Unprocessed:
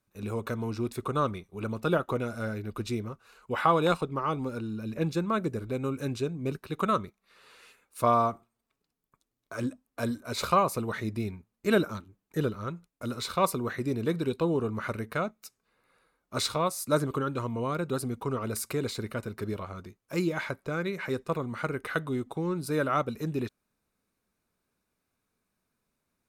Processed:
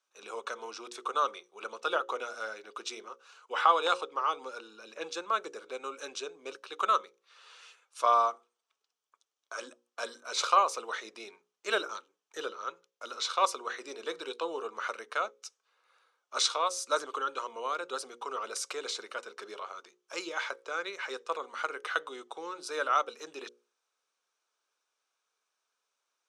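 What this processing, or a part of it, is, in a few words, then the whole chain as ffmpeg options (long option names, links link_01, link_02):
phone speaker on a table: -filter_complex "[0:a]highpass=frequency=500:width=0.5412,highpass=frequency=500:width=1.3066,equalizer=frequency=630:width_type=q:width=4:gain=-5,equalizer=frequency=1300:width_type=q:width=4:gain=3,equalizer=frequency=2000:width_type=q:width=4:gain=-4,equalizer=frequency=3200:width_type=q:width=4:gain=7,equalizer=frequency=5900:width_type=q:width=4:gain=8,lowpass=frequency=8500:width=0.5412,lowpass=frequency=8500:width=1.3066,bandreject=frequency=60:width_type=h:width=6,bandreject=frequency=120:width_type=h:width=6,bandreject=frequency=180:width_type=h:width=6,bandreject=frequency=240:width_type=h:width=6,bandreject=frequency=300:width_type=h:width=6,bandreject=frequency=360:width_type=h:width=6,bandreject=frequency=420:width_type=h:width=6,bandreject=frequency=480:width_type=h:width=6,bandreject=frequency=540:width_type=h:width=6,asettb=1/sr,asplit=3[link_01][link_02][link_03];[link_01]atrim=end=12.484[link_04];[link_02]atrim=start=12.48:end=13.29,asetpts=PTS-STARTPTS,afade=type=in:duration=0.004:curve=qsin,afade=type=out:start_time=0.806:duration=0.004:curve=qsin,equalizer=frequency=8700:width_type=o:width=0.41:gain=-5.5[link_05];[link_03]atrim=start=13.286[link_06];[link_04][link_05]acrossfade=duration=0.004:curve1=hsin:curve2=qsin[link_07];[link_07][link_06]acrossfade=duration=0.004:curve1=qsin:curve2=hsin"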